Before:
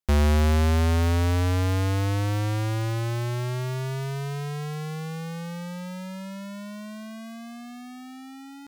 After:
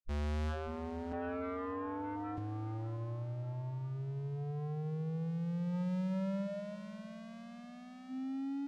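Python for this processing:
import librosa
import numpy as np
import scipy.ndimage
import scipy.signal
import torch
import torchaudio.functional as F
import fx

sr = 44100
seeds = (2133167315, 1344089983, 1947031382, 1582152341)

y = fx.tracing_dist(x, sr, depth_ms=0.22)
y = fx.noise_reduce_blind(y, sr, reduce_db=19)
y = fx.highpass(y, sr, hz=1400.0, slope=6, at=(1.12, 2.38))
y = fx.over_compress(y, sr, threshold_db=-39.0, ratio=-1.0)
y = 10.0 ** (-36.0 / 20.0) * np.tanh(y / 10.0 ** (-36.0 / 20.0))
y = fx.air_absorb(y, sr, metres=77.0)
y = fx.echo_feedback(y, sr, ms=590, feedback_pct=43, wet_db=-15.5)
y = y * 10.0 ** (3.5 / 20.0)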